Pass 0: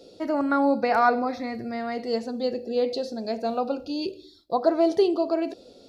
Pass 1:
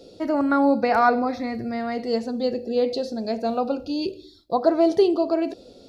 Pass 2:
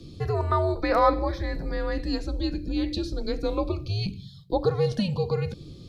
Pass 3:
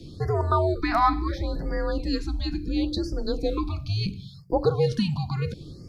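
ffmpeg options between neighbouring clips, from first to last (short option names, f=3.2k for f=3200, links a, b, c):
-af "lowshelf=f=180:g=7,volume=1.5dB"
-filter_complex "[0:a]acrossover=split=130|720[a][b][c];[a]aeval=exprs='0.015*sin(PI/2*5.01*val(0)/0.015)':c=same[d];[b]acompressor=threshold=-28dB:ratio=6[e];[d][e][c]amix=inputs=3:normalize=0,afreqshift=-190"
-af "afftfilt=real='re*(1-between(b*sr/1024,420*pow(3300/420,0.5+0.5*sin(2*PI*0.72*pts/sr))/1.41,420*pow(3300/420,0.5+0.5*sin(2*PI*0.72*pts/sr))*1.41))':imag='im*(1-between(b*sr/1024,420*pow(3300/420,0.5+0.5*sin(2*PI*0.72*pts/sr))/1.41,420*pow(3300/420,0.5+0.5*sin(2*PI*0.72*pts/sr))*1.41))':win_size=1024:overlap=0.75,volume=1.5dB"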